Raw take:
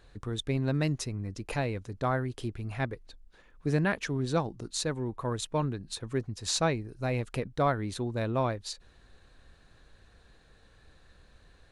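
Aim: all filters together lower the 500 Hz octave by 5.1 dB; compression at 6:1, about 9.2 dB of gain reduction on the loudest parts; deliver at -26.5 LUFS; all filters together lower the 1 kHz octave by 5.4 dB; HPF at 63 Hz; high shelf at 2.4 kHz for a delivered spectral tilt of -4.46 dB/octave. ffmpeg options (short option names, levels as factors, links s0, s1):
-af "highpass=63,equalizer=f=500:t=o:g=-5,equalizer=f=1000:t=o:g=-6,highshelf=f=2400:g=3,acompressor=threshold=0.0178:ratio=6,volume=4.47"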